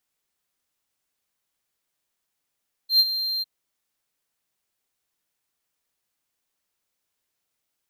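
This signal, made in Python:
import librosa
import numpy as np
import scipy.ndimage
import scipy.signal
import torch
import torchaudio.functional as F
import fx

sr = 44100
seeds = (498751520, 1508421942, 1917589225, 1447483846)

y = fx.adsr_tone(sr, wave='triangle', hz=4170.0, attack_ms=106.0, decay_ms=44.0, sustain_db=-12.0, held_s=0.53, release_ms=23.0, level_db=-10.0)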